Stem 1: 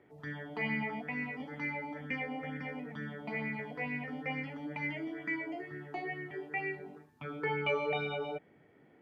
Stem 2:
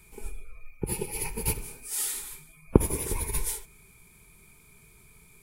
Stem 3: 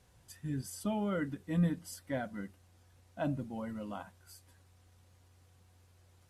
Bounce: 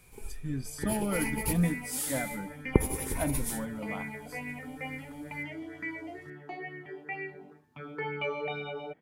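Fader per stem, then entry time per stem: −1.5, −4.0, +2.5 decibels; 0.55, 0.00, 0.00 seconds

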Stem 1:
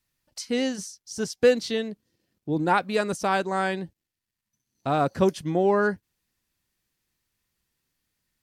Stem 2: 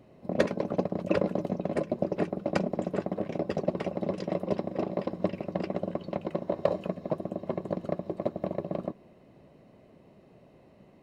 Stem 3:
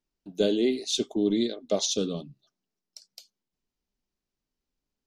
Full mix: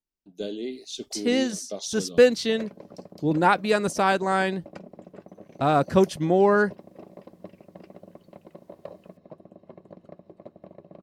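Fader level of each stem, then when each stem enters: +2.5, −14.5, −8.5 decibels; 0.75, 2.20, 0.00 seconds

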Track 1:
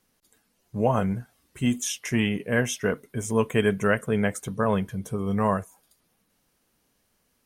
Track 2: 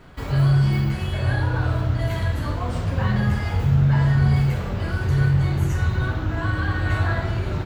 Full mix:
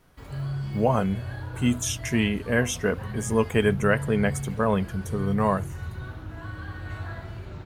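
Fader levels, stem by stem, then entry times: +0.5, −13.5 decibels; 0.00, 0.00 seconds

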